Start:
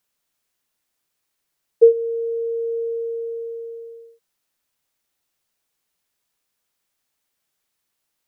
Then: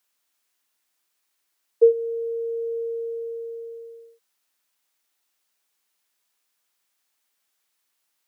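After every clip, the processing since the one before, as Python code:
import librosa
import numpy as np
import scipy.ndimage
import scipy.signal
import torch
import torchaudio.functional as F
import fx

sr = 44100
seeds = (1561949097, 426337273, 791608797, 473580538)

y = scipy.signal.sosfilt(scipy.signal.butter(2, 310.0, 'highpass', fs=sr, output='sos'), x)
y = fx.peak_eq(y, sr, hz=490.0, db=-5.0, octaves=1.1)
y = F.gain(torch.from_numpy(y), 2.0).numpy()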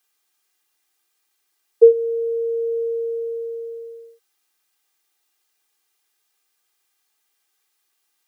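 y = x + 0.71 * np.pad(x, (int(2.5 * sr / 1000.0), 0))[:len(x)]
y = F.gain(torch.from_numpy(y), 1.5).numpy()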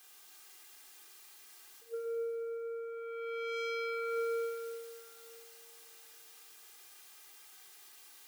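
y = fx.over_compress(x, sr, threshold_db=-30.0, ratio=-0.5)
y = 10.0 ** (-34.5 / 20.0) * np.tanh(y / 10.0 ** (-34.5 / 20.0))
y = fx.rev_plate(y, sr, seeds[0], rt60_s=2.9, hf_ratio=0.9, predelay_ms=0, drr_db=-0.5)
y = F.gain(torch.from_numpy(y), 3.5).numpy()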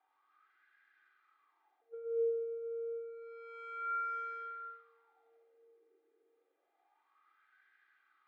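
y = fx.cabinet(x, sr, low_hz=250.0, low_slope=24, high_hz=3100.0, hz=(310.0, 460.0, 710.0, 1000.0, 1600.0, 2800.0), db=(8, -6, -4, -8, -4, -8))
y = fx.cheby_harmonics(y, sr, harmonics=(2, 7), levels_db=(-39, -25), full_scale_db=-34.0)
y = fx.wah_lfo(y, sr, hz=0.29, low_hz=410.0, high_hz=1600.0, q=6.8)
y = F.gain(torch.from_numpy(y), 11.0).numpy()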